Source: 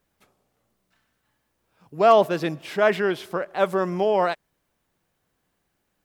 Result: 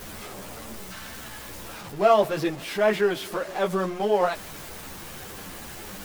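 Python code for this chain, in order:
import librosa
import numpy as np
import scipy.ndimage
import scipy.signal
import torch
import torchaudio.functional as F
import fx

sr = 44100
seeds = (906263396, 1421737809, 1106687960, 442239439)

y = x + 0.5 * 10.0 ** (-30.0 / 20.0) * np.sign(x)
y = fx.ensemble(y, sr)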